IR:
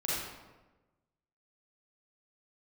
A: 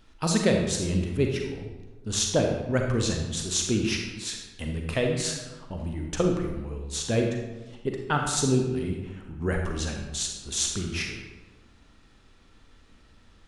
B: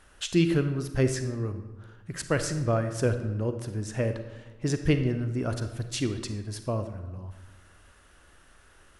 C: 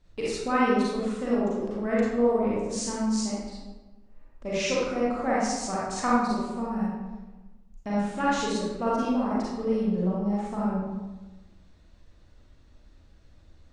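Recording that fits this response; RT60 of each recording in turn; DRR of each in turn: C; 1.2, 1.2, 1.2 seconds; 2.0, 8.5, −8.0 decibels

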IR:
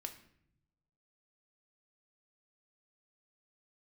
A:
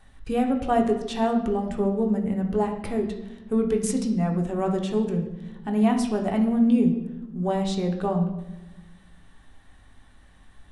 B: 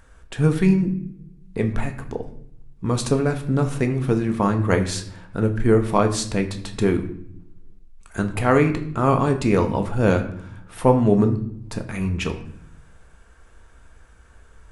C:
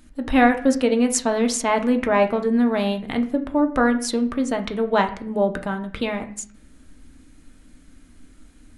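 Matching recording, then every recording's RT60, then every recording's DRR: B; 1.0 s, non-exponential decay, 0.55 s; 2.0, 5.0, 5.0 decibels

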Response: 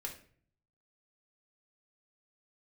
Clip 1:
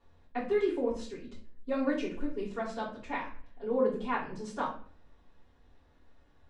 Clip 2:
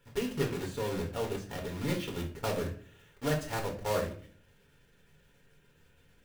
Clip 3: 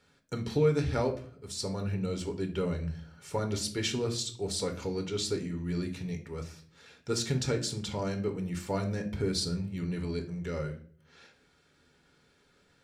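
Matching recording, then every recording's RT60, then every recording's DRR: 2; 0.50, 0.50, 0.50 seconds; −8.0, 0.0, 4.0 decibels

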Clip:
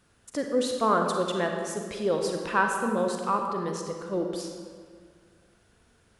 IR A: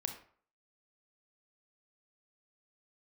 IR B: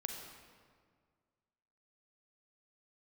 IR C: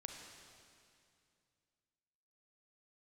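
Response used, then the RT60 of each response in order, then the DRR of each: B; 0.50, 1.9, 2.4 seconds; 5.0, 2.5, 2.5 decibels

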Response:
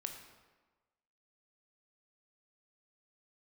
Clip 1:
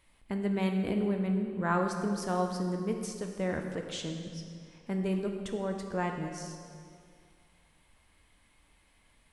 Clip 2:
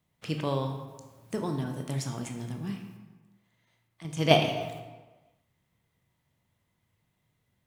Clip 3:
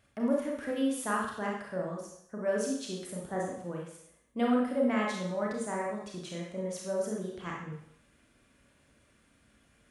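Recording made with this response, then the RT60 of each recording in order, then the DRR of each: 2; 2.2, 1.3, 0.70 seconds; 3.0, 4.0, −2.5 decibels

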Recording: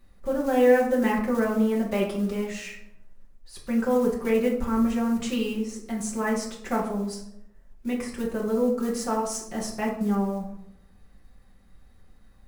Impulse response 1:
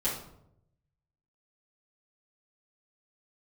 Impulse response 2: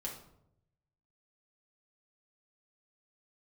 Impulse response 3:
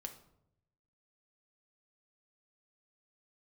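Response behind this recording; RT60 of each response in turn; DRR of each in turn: 2; 0.75, 0.75, 0.80 seconds; −10.0, −3.0, 4.5 decibels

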